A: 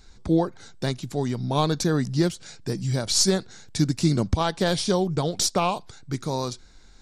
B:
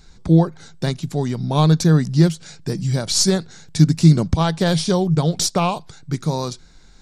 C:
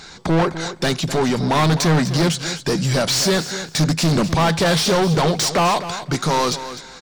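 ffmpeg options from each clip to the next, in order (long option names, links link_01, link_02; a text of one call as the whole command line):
ffmpeg -i in.wav -af "equalizer=frequency=160:width_type=o:width=0.24:gain=11.5,volume=3dB" out.wav
ffmpeg -i in.wav -filter_complex "[0:a]asplit=2[link_01][link_02];[link_02]highpass=frequency=720:poles=1,volume=33dB,asoftclip=type=tanh:threshold=-1dB[link_03];[link_01][link_03]amix=inputs=2:normalize=0,lowpass=frequency=4100:poles=1,volume=-6dB,aecho=1:1:254|508:0.237|0.0427,volume=-8dB" out.wav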